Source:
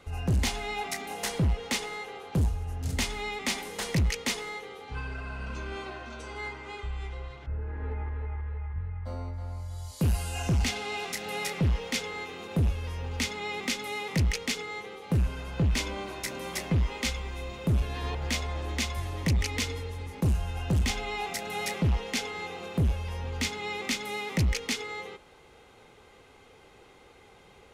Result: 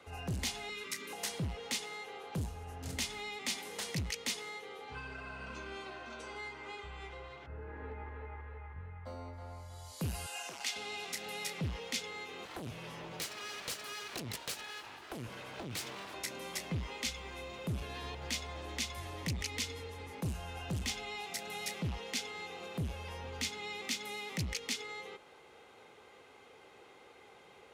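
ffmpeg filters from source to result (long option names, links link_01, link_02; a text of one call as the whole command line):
ffmpeg -i in.wav -filter_complex "[0:a]asettb=1/sr,asplit=3[link_01][link_02][link_03];[link_01]atrim=end=0.694[link_04];[link_02]atrim=start=0.69:end=1.13,asetpts=PTS-STARTPTS,afade=type=in:duration=0.004:curve=qsin,afade=type=out:start_time=0.436:duration=0.004:curve=qsin,asuperstop=centerf=730:order=20:qfactor=2.9[link_05];[link_03]atrim=start=1.126[link_06];[link_04][link_05]acrossfade=duration=0.004:curve1=hsin:curve2=qsin[link_07];[link_07][link_06]acrossfade=duration=0.004:curve1=qsin:curve2=hsin,asettb=1/sr,asplit=3[link_08][link_09][link_10];[link_08]atrim=end=10.264[link_11];[link_09]atrim=start=10.26:end=10.76,asetpts=PTS-STARTPTS,afade=type=in:duration=0.004:curve=qsin,afade=type=out:start_time=0.496:duration=0.004:curve=qsin,highpass=650[link_12];[link_10]atrim=start=10.756[link_13];[link_11][link_12]acrossfade=duration=0.004:curve1=hsin:curve2=qsin[link_14];[link_14][link_13]acrossfade=duration=0.004:curve1=qsin:curve2=hsin,asettb=1/sr,asplit=3[link_15][link_16][link_17];[link_15]atrim=end=12.454[link_18];[link_16]atrim=start=12.45:end=16.14,asetpts=PTS-STARTPTS,afade=type=in:duration=0.004:curve=qsin,afade=type=out:start_time=3.686:duration=0.004:curve=qsin,aeval=exprs='abs(val(0))':channel_layout=same[link_19];[link_17]atrim=start=16.136[link_20];[link_18][link_19]acrossfade=duration=0.004:curve1=hsin:curve2=qsin[link_21];[link_21][link_20]acrossfade=duration=0.004:curve1=qsin:curve2=hsin,highpass=83,bass=frequency=250:gain=-8,treble=frequency=4000:gain=-3,acrossover=split=210|3000[link_22][link_23][link_24];[link_23]acompressor=threshold=-42dB:ratio=6[link_25];[link_22][link_25][link_24]amix=inputs=3:normalize=0,volume=-1.5dB" out.wav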